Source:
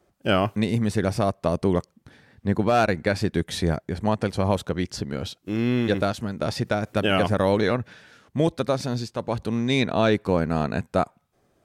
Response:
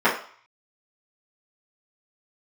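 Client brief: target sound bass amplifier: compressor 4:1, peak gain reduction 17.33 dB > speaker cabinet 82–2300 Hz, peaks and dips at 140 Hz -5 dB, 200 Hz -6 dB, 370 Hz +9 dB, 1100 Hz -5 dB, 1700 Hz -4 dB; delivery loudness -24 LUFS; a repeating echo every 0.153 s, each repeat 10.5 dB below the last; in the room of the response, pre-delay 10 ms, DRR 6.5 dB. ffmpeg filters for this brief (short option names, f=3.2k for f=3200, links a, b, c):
-filter_complex "[0:a]aecho=1:1:153|306|459:0.299|0.0896|0.0269,asplit=2[a][b];[1:a]atrim=start_sample=2205,adelay=10[c];[b][c]afir=irnorm=-1:irlink=0,volume=-27dB[d];[a][d]amix=inputs=2:normalize=0,acompressor=threshold=-35dB:ratio=4,highpass=f=82:w=0.5412,highpass=f=82:w=1.3066,equalizer=f=140:t=q:w=4:g=-5,equalizer=f=200:t=q:w=4:g=-6,equalizer=f=370:t=q:w=4:g=9,equalizer=f=1.1k:t=q:w=4:g=-5,equalizer=f=1.7k:t=q:w=4:g=-4,lowpass=f=2.3k:w=0.5412,lowpass=f=2.3k:w=1.3066,volume=13dB"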